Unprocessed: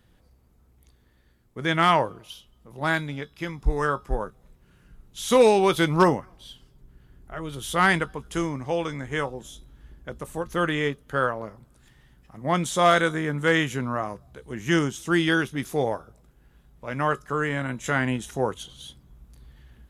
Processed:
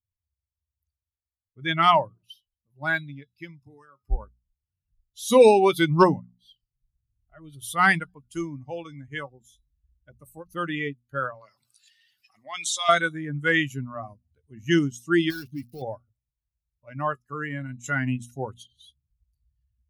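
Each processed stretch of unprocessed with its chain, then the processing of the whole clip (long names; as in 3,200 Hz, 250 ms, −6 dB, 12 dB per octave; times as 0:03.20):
0:03.63–0:04.04: high-pass filter 130 Hz 24 dB per octave + high-shelf EQ 5,900 Hz +5.5 dB + downward compressor, threshold −32 dBFS
0:11.34–0:12.89: resonant band-pass 4,000 Hz, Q 0.61 + envelope flattener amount 50%
0:15.30–0:15.82: gap after every zero crossing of 0.16 ms + leveller curve on the samples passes 2 + downward compressor 3 to 1, threshold −29 dBFS
whole clip: spectral dynamics exaggerated over time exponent 2; mains-hum notches 60/120/180/240 Hz; level +4.5 dB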